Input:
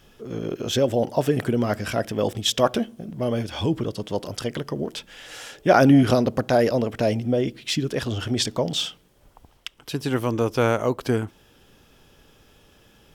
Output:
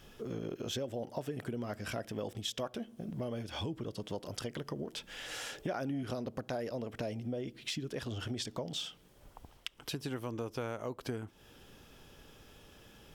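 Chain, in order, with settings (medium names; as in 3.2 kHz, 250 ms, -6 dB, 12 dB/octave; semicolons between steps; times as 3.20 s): compression 5:1, threshold -35 dBFS, peak gain reduction 21 dB; trim -2 dB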